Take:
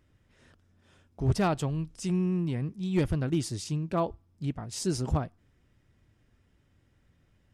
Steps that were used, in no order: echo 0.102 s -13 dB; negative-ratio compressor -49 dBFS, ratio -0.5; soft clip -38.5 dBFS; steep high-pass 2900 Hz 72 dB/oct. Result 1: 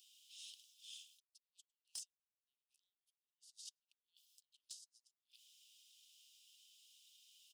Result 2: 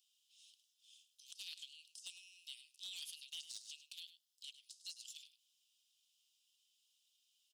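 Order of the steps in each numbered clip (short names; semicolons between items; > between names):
echo > negative-ratio compressor > steep high-pass > soft clip; steep high-pass > negative-ratio compressor > soft clip > echo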